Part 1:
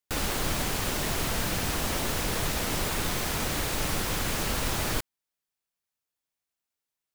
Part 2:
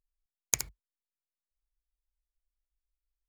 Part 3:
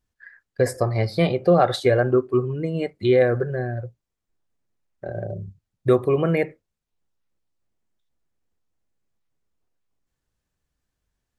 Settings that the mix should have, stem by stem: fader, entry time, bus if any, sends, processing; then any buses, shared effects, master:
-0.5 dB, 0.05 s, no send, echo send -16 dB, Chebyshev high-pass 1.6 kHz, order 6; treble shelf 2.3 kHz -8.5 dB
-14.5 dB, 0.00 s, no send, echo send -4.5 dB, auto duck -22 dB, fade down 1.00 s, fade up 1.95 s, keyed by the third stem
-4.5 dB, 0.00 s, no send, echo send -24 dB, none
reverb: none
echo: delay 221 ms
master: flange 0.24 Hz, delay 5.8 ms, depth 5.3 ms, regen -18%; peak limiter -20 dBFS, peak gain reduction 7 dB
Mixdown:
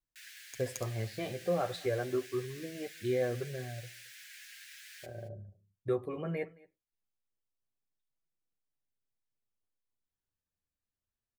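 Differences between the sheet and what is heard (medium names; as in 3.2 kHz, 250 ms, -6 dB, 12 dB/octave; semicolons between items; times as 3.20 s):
stem 1 -0.5 dB -> -8.5 dB; stem 2 -14.5 dB -> -8.0 dB; stem 3 -4.5 dB -> -12.0 dB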